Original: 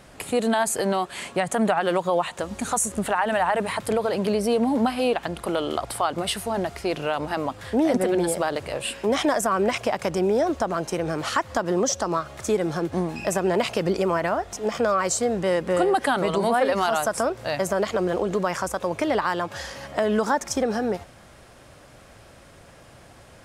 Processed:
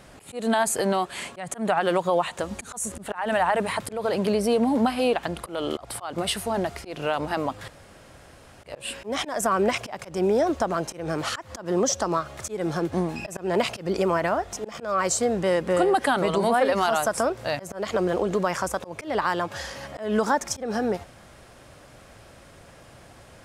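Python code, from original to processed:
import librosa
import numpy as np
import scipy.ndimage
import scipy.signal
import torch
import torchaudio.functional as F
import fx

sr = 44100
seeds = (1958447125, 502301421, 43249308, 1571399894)

y = fx.edit(x, sr, fx.room_tone_fill(start_s=7.68, length_s=0.96), tone=tone)
y = fx.auto_swell(y, sr, attack_ms=190.0)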